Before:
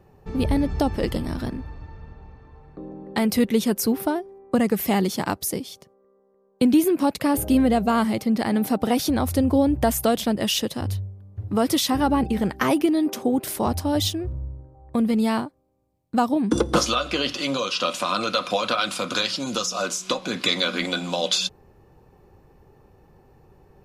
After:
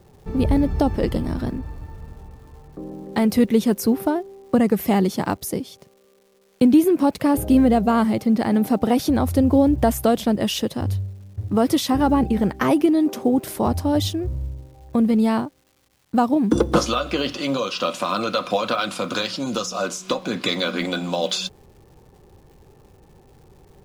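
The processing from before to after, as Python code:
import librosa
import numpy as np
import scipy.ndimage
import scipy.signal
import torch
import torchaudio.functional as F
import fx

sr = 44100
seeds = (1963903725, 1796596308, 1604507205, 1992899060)

y = fx.block_float(x, sr, bits=7)
y = fx.tilt_shelf(y, sr, db=3.5, hz=1400.0)
y = fx.dmg_crackle(y, sr, seeds[0], per_s=410.0, level_db=-48.0)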